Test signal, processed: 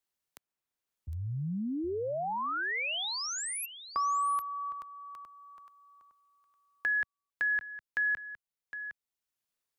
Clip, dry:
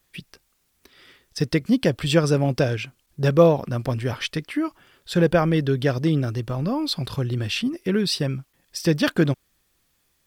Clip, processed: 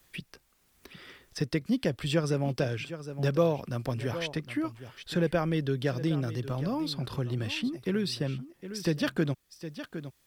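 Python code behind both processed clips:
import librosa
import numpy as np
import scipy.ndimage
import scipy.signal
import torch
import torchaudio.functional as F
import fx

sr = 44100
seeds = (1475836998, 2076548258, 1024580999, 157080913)

y = x + 10.0 ** (-16.0 / 20.0) * np.pad(x, (int(761 * sr / 1000.0), 0))[:len(x)]
y = fx.band_squash(y, sr, depth_pct=40)
y = F.gain(torch.from_numpy(y), -8.0).numpy()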